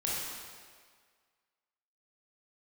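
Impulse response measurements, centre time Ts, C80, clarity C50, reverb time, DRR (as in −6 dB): 119 ms, 0.0 dB, −2.5 dB, 1.8 s, −6.5 dB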